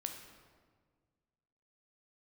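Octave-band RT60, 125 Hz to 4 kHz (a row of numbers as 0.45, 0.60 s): 2.2, 2.0, 1.8, 1.5, 1.3, 1.0 s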